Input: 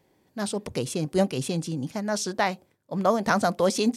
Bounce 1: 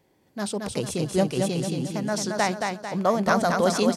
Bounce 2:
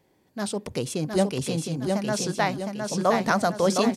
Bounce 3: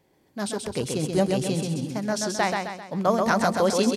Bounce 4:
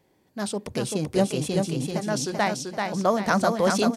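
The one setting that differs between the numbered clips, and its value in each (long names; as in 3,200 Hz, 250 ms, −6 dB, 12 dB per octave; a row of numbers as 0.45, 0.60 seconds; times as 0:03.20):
repeating echo, delay time: 223, 712, 131, 387 milliseconds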